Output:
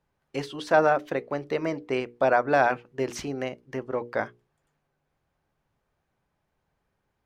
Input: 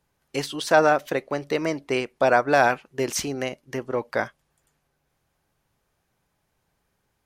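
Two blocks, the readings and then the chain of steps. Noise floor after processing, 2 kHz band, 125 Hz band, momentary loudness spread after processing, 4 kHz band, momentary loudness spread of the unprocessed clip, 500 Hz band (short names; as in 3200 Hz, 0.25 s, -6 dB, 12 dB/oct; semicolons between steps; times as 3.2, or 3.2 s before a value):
-78 dBFS, -4.0 dB, -2.5 dB, 13 LU, -8.0 dB, 12 LU, -2.5 dB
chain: LPF 2100 Hz 6 dB/oct; notches 60/120/180/240/300/360/420/480 Hz; gain -2 dB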